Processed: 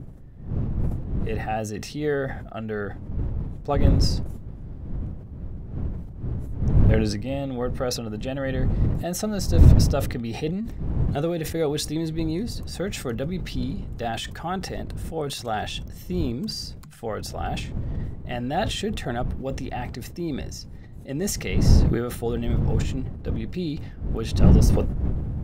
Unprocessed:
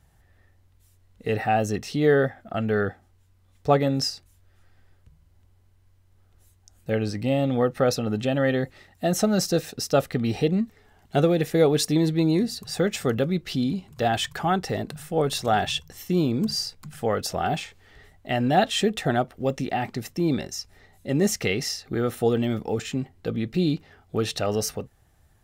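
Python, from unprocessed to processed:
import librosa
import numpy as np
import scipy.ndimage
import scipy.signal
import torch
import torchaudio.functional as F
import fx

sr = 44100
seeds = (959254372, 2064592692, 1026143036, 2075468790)

y = fx.dmg_wind(x, sr, seeds[0], corner_hz=110.0, level_db=-20.0)
y = fx.sustainer(y, sr, db_per_s=50.0)
y = y * 10.0 ** (-6.0 / 20.0)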